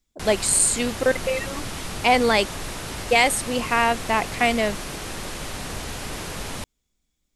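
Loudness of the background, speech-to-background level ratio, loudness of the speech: -32.0 LUFS, 11.0 dB, -21.0 LUFS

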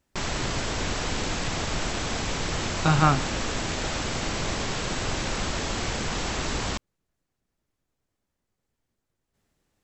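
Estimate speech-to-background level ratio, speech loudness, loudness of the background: 5.5 dB, -23.5 LUFS, -29.0 LUFS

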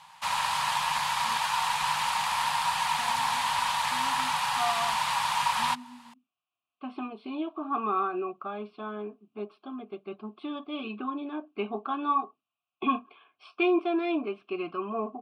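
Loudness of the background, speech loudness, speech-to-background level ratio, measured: -27.5 LUFS, -32.5 LUFS, -5.0 dB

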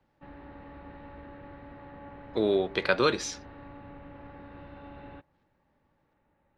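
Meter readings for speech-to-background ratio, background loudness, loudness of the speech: 20.0 dB, -47.5 LUFS, -27.5 LUFS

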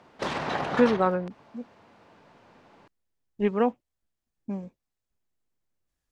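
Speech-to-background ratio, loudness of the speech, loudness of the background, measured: 4.5 dB, -27.0 LUFS, -31.5 LUFS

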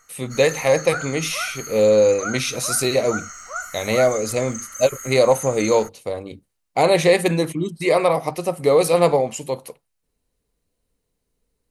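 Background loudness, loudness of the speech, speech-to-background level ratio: -31.5 LUFS, -19.5 LUFS, 12.0 dB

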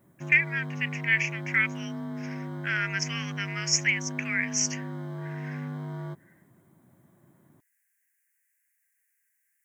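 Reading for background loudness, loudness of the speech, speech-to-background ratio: -36.5 LUFS, -27.0 LUFS, 9.5 dB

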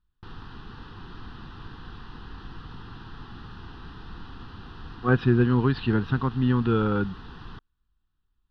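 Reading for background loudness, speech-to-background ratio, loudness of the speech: -44.0 LUFS, 20.0 dB, -24.0 LUFS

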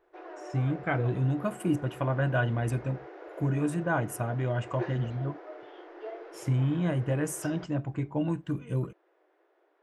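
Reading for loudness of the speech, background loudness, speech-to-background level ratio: -30.5 LUFS, -44.5 LUFS, 14.0 dB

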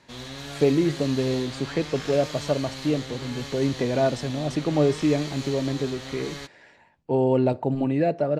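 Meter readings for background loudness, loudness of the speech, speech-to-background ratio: -36.0 LUFS, -25.5 LUFS, 10.5 dB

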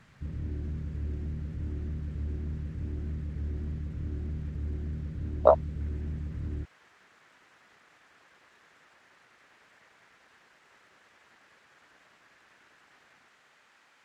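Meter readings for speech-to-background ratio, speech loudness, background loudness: 11.5 dB, -25.0 LUFS, -36.5 LUFS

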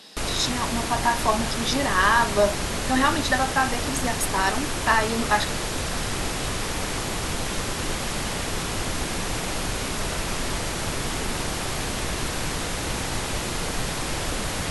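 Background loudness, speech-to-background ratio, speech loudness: -27.5 LUFS, 3.5 dB, -24.0 LUFS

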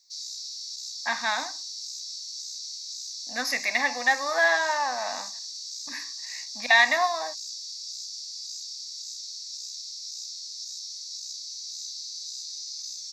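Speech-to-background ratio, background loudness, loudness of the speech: 10.0 dB, -34.5 LUFS, -24.5 LUFS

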